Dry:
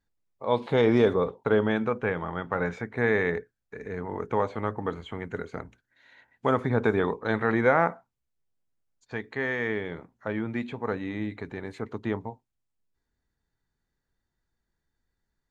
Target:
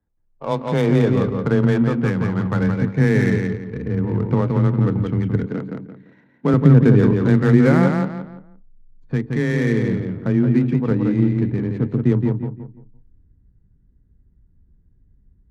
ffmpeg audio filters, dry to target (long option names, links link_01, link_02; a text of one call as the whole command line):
ffmpeg -i in.wav -filter_complex "[0:a]asplit=2[link_01][link_02];[link_02]aecho=0:1:171|342|513|684:0.596|0.167|0.0467|0.0131[link_03];[link_01][link_03]amix=inputs=2:normalize=0,asubboost=boost=9.5:cutoff=230,asplit=2[link_04][link_05];[link_05]acompressor=threshold=-30dB:ratio=6,volume=0.5dB[link_06];[link_04][link_06]amix=inputs=2:normalize=0,afreqshift=16,adynamicsmooth=sensitivity=3.5:basefreq=1200,asettb=1/sr,asplit=3[link_07][link_08][link_09];[link_07]atrim=end=5.464[link_10];[link_08]atrim=start=5.46:end=6.54,asetpts=PTS-STARTPTS,afade=type=in:duration=0.004:curve=qsin,afade=type=out:start_time=1.076:duration=0.004:curve=qsin,highpass=frequency=160:width=0.5412,highpass=frequency=160:width=1.3066[link_11];[link_09]atrim=start=6.536[link_12];[link_10][link_11]acrossfade=duration=0.004:curve1=hsin:curve2=qsin[link_13];[link_13][link_12]acrossfade=duration=0.004:curve1=qsin:curve2=hsin" out.wav